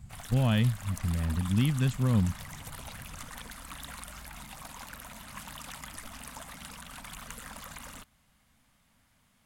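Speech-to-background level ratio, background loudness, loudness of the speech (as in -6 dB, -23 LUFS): 15.0 dB, -43.5 LUFS, -28.5 LUFS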